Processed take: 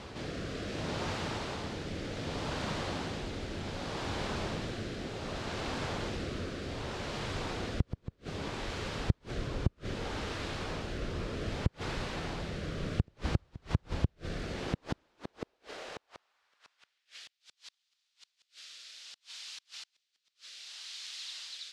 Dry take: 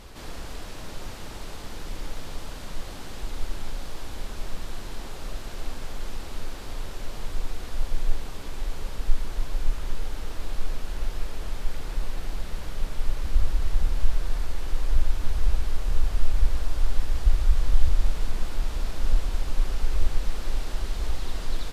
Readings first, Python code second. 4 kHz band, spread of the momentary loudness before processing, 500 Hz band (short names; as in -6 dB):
+0.5 dB, 11 LU, +3.0 dB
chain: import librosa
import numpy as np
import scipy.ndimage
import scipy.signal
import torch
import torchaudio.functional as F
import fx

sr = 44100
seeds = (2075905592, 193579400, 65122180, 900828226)

y = fx.hum_notches(x, sr, base_hz=60, count=5)
y = fx.rotary(y, sr, hz=0.65)
y = fx.gate_flip(y, sr, shuts_db=-13.0, range_db=-35)
y = fx.filter_sweep_highpass(y, sr, from_hz=100.0, to_hz=3900.0, start_s=14.25, end_s=17.48, q=0.99)
y = fx.air_absorb(y, sr, metres=97.0)
y = y * 10.0 ** (7.5 / 20.0)